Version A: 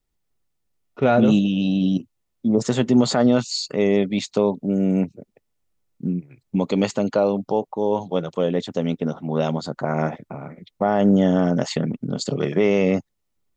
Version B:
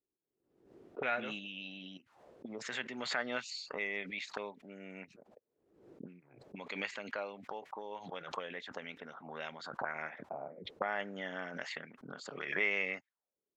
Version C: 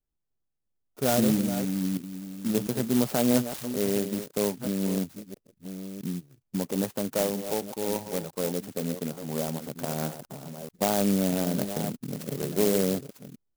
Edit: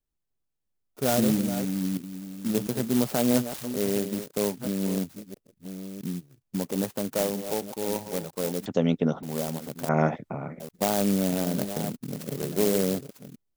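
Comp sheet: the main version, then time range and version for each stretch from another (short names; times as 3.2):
C
8.66–9.23 from A
9.89–10.6 from A
not used: B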